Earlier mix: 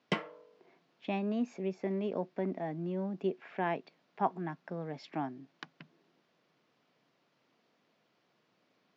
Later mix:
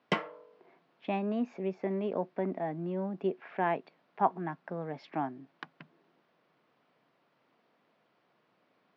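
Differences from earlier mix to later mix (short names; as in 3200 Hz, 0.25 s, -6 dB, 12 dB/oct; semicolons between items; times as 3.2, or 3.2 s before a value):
speech: add air absorption 140 m; master: add bell 1000 Hz +5 dB 2.3 oct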